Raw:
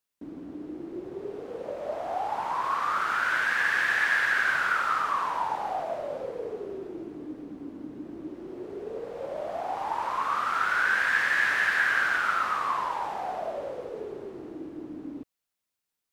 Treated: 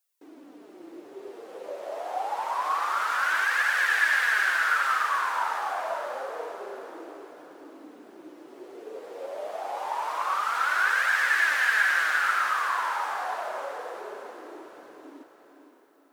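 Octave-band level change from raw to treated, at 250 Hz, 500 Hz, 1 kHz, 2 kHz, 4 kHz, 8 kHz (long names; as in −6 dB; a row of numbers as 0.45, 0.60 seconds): −9.0, −2.0, +1.0, +1.5, +2.5, +6.0 decibels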